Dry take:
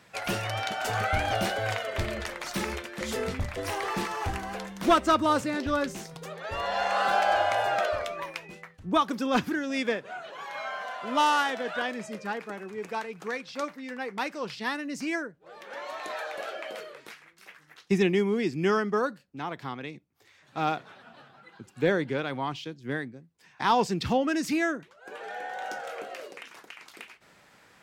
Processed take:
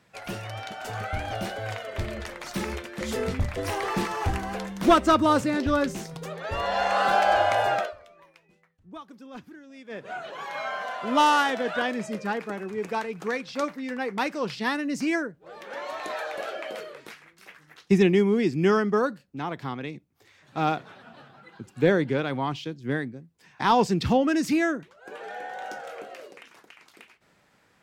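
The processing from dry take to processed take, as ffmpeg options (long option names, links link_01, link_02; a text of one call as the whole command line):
ffmpeg -i in.wav -filter_complex "[0:a]asplit=3[link_01][link_02][link_03];[link_01]atrim=end=7.94,asetpts=PTS-STARTPTS,afade=type=out:start_time=7.72:duration=0.22:silence=0.0794328[link_04];[link_02]atrim=start=7.94:end=9.89,asetpts=PTS-STARTPTS,volume=-22dB[link_05];[link_03]atrim=start=9.89,asetpts=PTS-STARTPTS,afade=type=in:duration=0.22:silence=0.0794328[link_06];[link_04][link_05][link_06]concat=n=3:v=0:a=1,lowshelf=frequency=470:gain=5,dynaudnorm=framelen=410:gausssize=13:maxgain=11.5dB,volume=-7dB" out.wav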